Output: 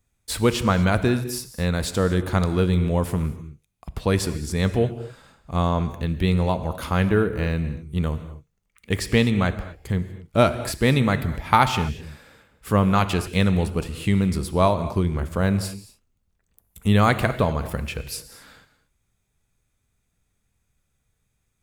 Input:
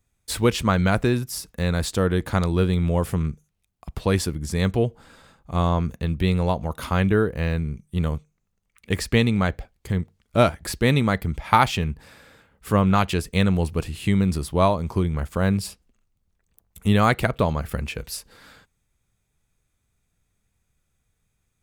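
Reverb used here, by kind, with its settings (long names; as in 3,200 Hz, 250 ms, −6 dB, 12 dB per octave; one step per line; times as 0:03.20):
reverb whose tail is shaped and stops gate 270 ms flat, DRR 11 dB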